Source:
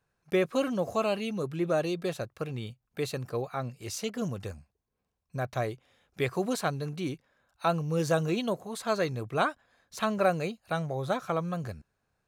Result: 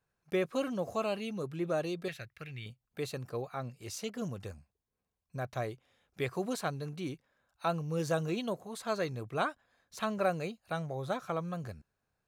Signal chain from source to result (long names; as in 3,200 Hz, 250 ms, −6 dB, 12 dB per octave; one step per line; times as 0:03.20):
0:02.08–0:02.66: graphic EQ with 10 bands 250 Hz −9 dB, 500 Hz −8 dB, 1,000 Hz −12 dB, 2,000 Hz +12 dB, 8,000 Hz −6 dB
level −5 dB